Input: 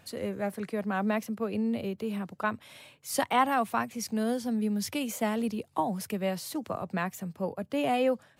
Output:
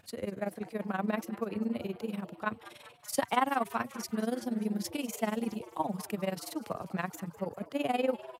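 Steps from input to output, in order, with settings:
amplitude modulation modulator 21 Hz, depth 75%
on a send: echo with shifted repeats 199 ms, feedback 61%, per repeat +130 Hz, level −18 dB

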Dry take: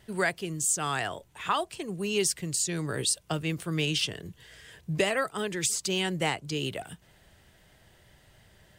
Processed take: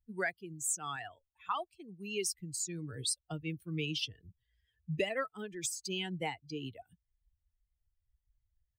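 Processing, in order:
spectral dynamics exaggerated over time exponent 2
0:00.96–0:02.34: low-shelf EQ 460 Hz −5.5 dB
level −4 dB

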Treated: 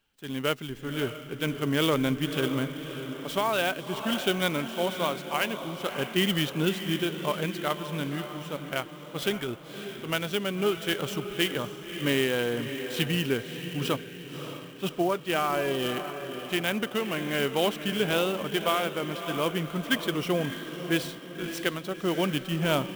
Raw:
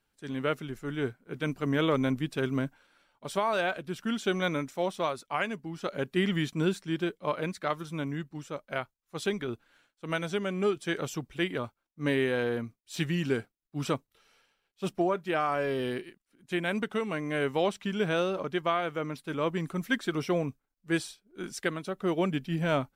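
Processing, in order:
parametric band 3,000 Hz +9.5 dB 0.49 octaves
feedback delay with all-pass diffusion 578 ms, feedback 49%, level −9 dB
converter with an unsteady clock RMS 0.021 ms
level +1 dB

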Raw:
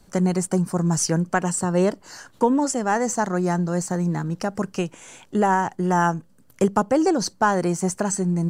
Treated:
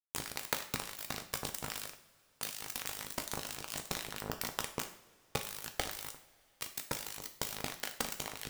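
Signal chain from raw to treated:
wrap-around overflow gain 19 dB
downward compressor 20 to 1, threshold −26 dBFS, peak gain reduction 6 dB
ring modulation 26 Hz
dead-zone distortion −26 dBFS
coupled-rooms reverb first 0.49 s, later 3 s, from −22 dB, DRR 5.5 dB
level +11.5 dB

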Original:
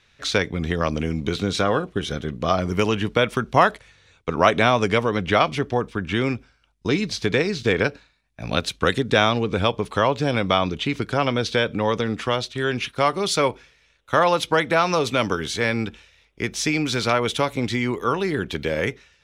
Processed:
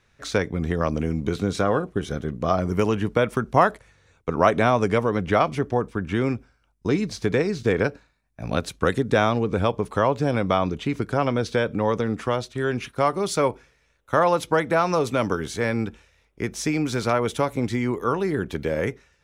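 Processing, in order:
parametric band 3,400 Hz −10.5 dB 1.6 octaves

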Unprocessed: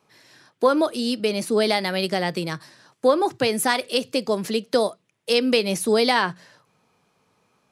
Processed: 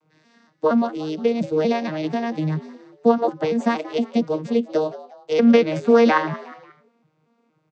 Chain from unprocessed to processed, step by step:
vocoder with an arpeggio as carrier bare fifth, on D#3, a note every 234 ms
0:05.39–0:06.18: parametric band 1,400 Hz +13.5 dB 1.2 octaves
echo with shifted repeats 180 ms, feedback 41%, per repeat +91 Hz, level −17 dB
level +2.5 dB

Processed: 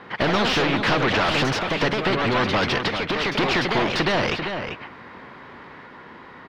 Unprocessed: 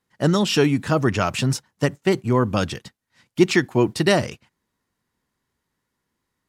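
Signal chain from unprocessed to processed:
downward compressor, threshold −28 dBFS, peak gain reduction 17 dB
mid-hump overdrive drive 25 dB, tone 1,900 Hz, clips at −17.5 dBFS
delay with pitch and tempo change per echo 88 ms, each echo +2 semitones, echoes 2, each echo −6 dB
high-frequency loss of the air 340 metres
single-tap delay 391 ms −14 dB
every bin compressed towards the loudest bin 2 to 1
level +7.5 dB

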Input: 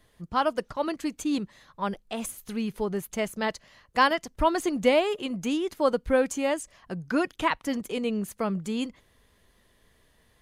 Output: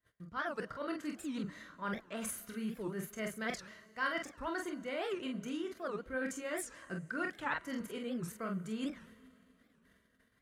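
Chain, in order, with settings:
low-shelf EQ 170 Hz +3.5 dB
notch comb filter 850 Hz
reversed playback
downward compressor 10 to 1, threshold −36 dBFS, peak gain reduction 20.5 dB
reversed playback
parametric band 1,600 Hz +13.5 dB 0.53 octaves
ambience of single reflections 27 ms −8 dB, 46 ms −5 dB
noise gate −58 dBFS, range −26 dB
on a send at −20 dB: convolution reverb RT60 3.7 s, pre-delay 63 ms
on the sum: wow of a warped record 78 rpm, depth 250 cents
level −2.5 dB

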